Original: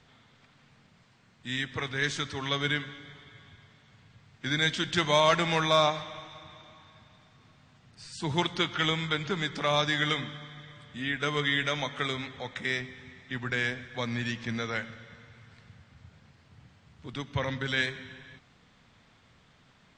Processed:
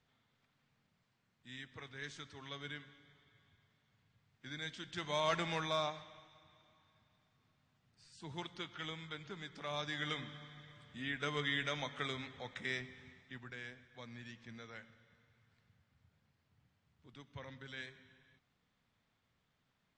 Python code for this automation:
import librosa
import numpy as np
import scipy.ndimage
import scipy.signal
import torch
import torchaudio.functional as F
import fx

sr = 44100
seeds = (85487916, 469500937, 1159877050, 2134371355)

y = fx.gain(x, sr, db=fx.line((4.89, -17.5), (5.36, -10.0), (6.33, -17.0), (9.51, -17.0), (10.38, -9.0), (13.08, -9.0), (13.55, -19.0)))